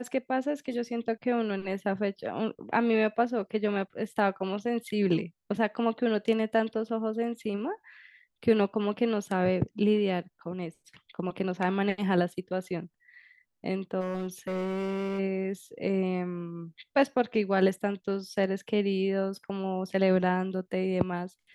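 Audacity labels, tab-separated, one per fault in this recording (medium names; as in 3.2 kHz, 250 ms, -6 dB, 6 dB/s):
14.000000	15.200000	clipped -28 dBFS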